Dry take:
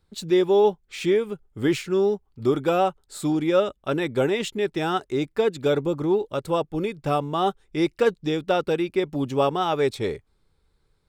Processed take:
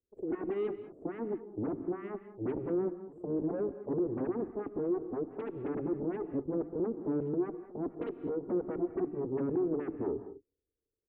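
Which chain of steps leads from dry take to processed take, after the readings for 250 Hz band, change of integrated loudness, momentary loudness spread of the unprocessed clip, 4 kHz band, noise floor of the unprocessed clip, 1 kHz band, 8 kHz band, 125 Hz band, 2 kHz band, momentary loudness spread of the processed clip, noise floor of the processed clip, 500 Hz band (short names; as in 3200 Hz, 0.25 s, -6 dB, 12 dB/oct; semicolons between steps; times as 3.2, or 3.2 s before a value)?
-8.0 dB, -11.5 dB, 6 LU, under -35 dB, -68 dBFS, -19.5 dB, under -40 dB, -12.0 dB, -21.5 dB, 6 LU, under -85 dBFS, -12.0 dB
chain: minimum comb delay 1.7 ms; Chebyshev band-stop 510–7900 Hz, order 5; high shelf 4000 Hz -11 dB; comb 2.9 ms, depth 59%; in parallel at -5 dB: sine folder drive 19 dB, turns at -10.5 dBFS; on the sum: auto-wah 290–2600 Hz, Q 2.8, down, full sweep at -17.5 dBFS; air absorption 220 m; on a send: reverse echo 0.806 s -21 dB; on the sum: non-linear reverb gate 0.23 s rising, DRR 11.5 dB; gain -7 dB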